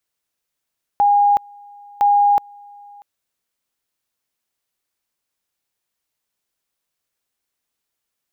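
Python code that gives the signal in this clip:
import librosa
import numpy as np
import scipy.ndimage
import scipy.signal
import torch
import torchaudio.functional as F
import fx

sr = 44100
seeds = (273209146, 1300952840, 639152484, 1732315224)

y = fx.two_level_tone(sr, hz=816.0, level_db=-10.5, drop_db=28.0, high_s=0.37, low_s=0.64, rounds=2)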